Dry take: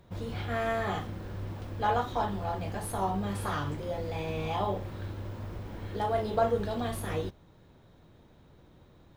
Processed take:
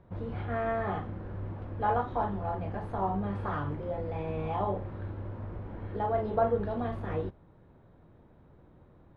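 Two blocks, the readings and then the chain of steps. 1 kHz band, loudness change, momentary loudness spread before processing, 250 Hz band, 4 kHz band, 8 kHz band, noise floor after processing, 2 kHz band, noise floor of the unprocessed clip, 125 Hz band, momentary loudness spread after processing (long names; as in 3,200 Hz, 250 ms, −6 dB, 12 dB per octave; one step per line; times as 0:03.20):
−0.5 dB, −0.5 dB, 11 LU, 0.0 dB, below −10 dB, below −30 dB, −58 dBFS, −3.5 dB, −58 dBFS, 0.0 dB, 11 LU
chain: low-pass filter 1,600 Hz 12 dB per octave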